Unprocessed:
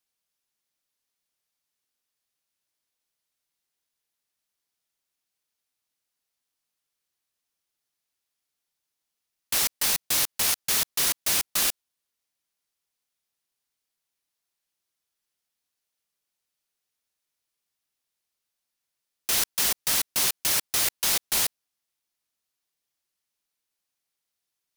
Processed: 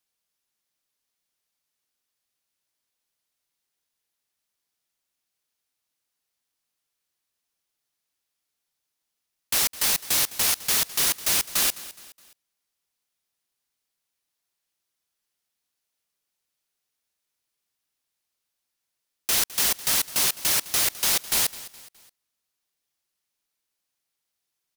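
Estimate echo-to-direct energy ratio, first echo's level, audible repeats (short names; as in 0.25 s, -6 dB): -16.5 dB, -17.5 dB, 3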